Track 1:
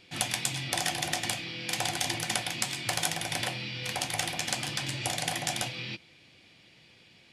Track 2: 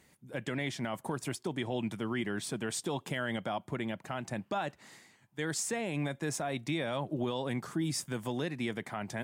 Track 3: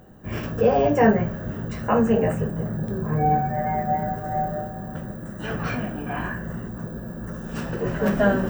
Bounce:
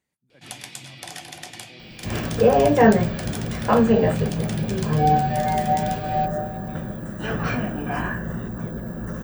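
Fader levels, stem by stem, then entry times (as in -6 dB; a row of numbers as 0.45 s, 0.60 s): -7.0 dB, -17.5 dB, +2.5 dB; 0.30 s, 0.00 s, 1.80 s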